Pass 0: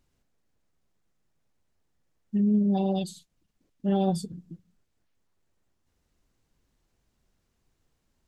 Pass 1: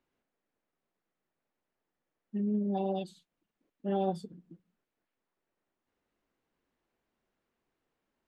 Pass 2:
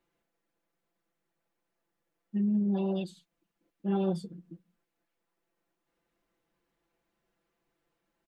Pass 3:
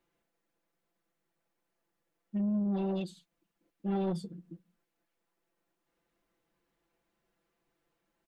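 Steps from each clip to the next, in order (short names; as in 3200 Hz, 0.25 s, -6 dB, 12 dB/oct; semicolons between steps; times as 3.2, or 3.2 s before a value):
three-band isolator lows -17 dB, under 220 Hz, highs -15 dB, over 3200 Hz; gain -2.5 dB
comb 5.9 ms, depth 94%
soft clip -26 dBFS, distortion -17 dB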